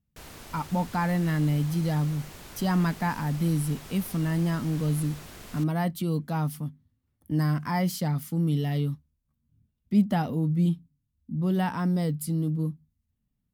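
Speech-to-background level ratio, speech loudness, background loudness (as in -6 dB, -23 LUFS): 16.5 dB, -28.0 LUFS, -44.5 LUFS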